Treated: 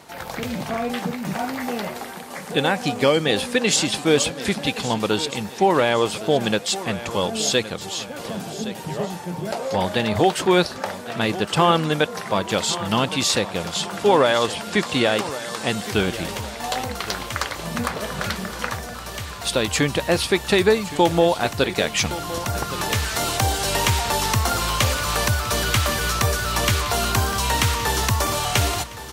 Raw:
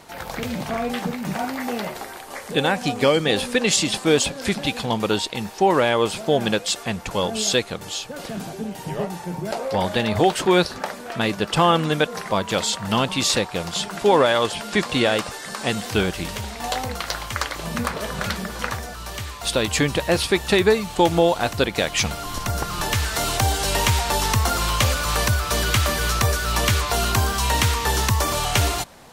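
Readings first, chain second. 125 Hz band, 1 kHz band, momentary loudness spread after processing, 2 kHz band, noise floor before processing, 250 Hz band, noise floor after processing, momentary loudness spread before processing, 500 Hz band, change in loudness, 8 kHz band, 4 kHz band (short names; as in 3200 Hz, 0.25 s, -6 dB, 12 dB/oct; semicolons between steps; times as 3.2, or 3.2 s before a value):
-0.5 dB, 0.0 dB, 10 LU, 0.0 dB, -37 dBFS, 0.0 dB, -35 dBFS, 11 LU, 0.0 dB, 0.0 dB, 0.0 dB, 0.0 dB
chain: HPF 64 Hz; feedback echo 1.117 s, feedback 42%, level -14.5 dB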